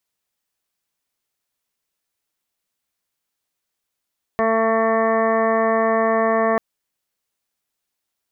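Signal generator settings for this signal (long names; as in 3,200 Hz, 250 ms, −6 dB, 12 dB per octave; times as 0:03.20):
steady harmonic partials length 2.19 s, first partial 224 Hz, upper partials 2.5/5/−6/1.5/−12/−18/−3/−12/−19 dB, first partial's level −24 dB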